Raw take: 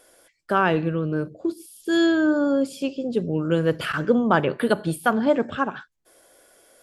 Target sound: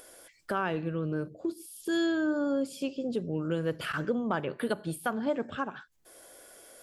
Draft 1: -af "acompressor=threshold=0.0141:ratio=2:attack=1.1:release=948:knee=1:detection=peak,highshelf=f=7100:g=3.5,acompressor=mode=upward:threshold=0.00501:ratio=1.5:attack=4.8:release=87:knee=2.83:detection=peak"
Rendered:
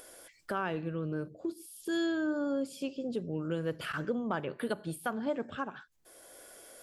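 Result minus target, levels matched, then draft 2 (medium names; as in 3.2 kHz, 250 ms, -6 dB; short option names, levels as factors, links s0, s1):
compression: peak gain reduction +3.5 dB
-af "acompressor=threshold=0.0299:ratio=2:attack=1.1:release=948:knee=1:detection=peak,highshelf=f=7100:g=3.5,acompressor=mode=upward:threshold=0.00501:ratio=1.5:attack=4.8:release=87:knee=2.83:detection=peak"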